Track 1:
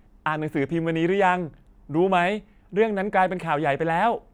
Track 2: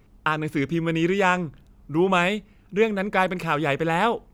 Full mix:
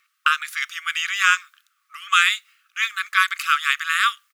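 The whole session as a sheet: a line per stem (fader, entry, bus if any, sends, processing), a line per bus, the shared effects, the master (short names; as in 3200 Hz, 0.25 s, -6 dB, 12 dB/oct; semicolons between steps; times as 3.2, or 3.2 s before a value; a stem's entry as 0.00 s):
0.0 dB, 0.00 s, no send, dry
+2.5 dB, 0.3 ms, polarity flipped, no send, high shelf 2300 Hz +11 dB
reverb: off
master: brick-wall FIR high-pass 1100 Hz; mismatched tape noise reduction decoder only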